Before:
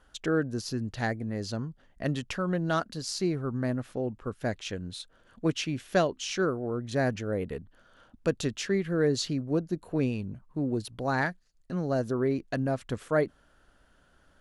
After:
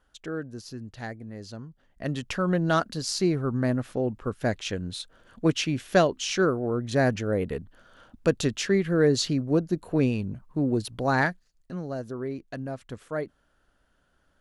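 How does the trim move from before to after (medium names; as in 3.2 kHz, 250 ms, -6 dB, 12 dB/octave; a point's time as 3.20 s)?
1.66 s -6.5 dB
2.44 s +4.5 dB
11.25 s +4.5 dB
11.96 s -5.5 dB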